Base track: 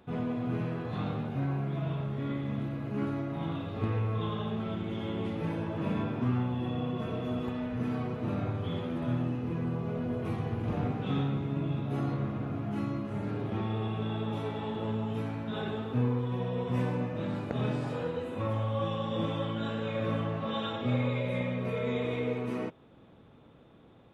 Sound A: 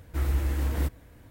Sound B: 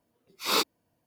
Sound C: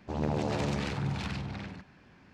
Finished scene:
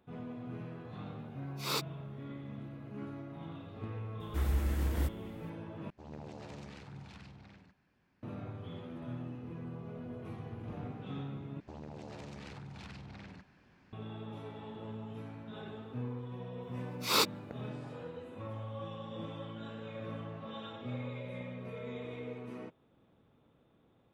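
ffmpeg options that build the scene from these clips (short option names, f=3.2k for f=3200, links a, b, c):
-filter_complex "[2:a]asplit=2[a][b];[3:a]asplit=2[c][d];[0:a]volume=-11dB[e];[d]acompressor=threshold=-44dB:ratio=4:attack=44:release=30:knee=1:detection=rms[f];[e]asplit=3[g][h][i];[g]atrim=end=5.904[j];[c]atrim=end=2.33,asetpts=PTS-STARTPTS,volume=-16.5dB[k];[h]atrim=start=8.226:end=11.604[l];[f]atrim=end=2.33,asetpts=PTS-STARTPTS,volume=-6.5dB[m];[i]atrim=start=13.926[n];[a]atrim=end=1.06,asetpts=PTS-STARTPTS,volume=-9.5dB,afade=t=in:d=0.004:c=hsin,afade=t=out:st=1.056:d=0.004:c=hsin,adelay=1180[o];[1:a]atrim=end=1.3,asetpts=PTS-STARTPTS,volume=-5dB,afade=t=in:d=0.004:c=hsin,afade=t=out:st=1.296:d=0.004:c=hsin,adelay=4200[p];[b]atrim=end=1.06,asetpts=PTS-STARTPTS,volume=-2.5dB,afade=t=in:d=0.004:c=hsin,afade=t=out:st=1.056:d=0.004:c=hsin,adelay=16620[q];[j][k]acrossfade=d=0.004:c1=hsin:c2=hsin[r];[r][l]acrossfade=d=0.004:c1=hsin:c2=hsin[s];[s][m]acrossfade=d=0.004:c1=hsin:c2=hsin[t];[t][n]acrossfade=d=0.004:c1=hsin:c2=hsin[u];[u][o][p][q]amix=inputs=4:normalize=0"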